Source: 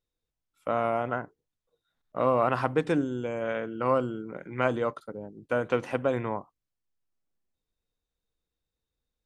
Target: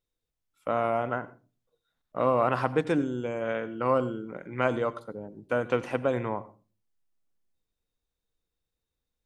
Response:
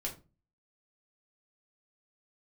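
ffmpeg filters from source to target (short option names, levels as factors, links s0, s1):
-filter_complex "[0:a]asplit=2[s0][s1];[1:a]atrim=start_sample=2205,adelay=84[s2];[s1][s2]afir=irnorm=-1:irlink=0,volume=0.133[s3];[s0][s3]amix=inputs=2:normalize=0"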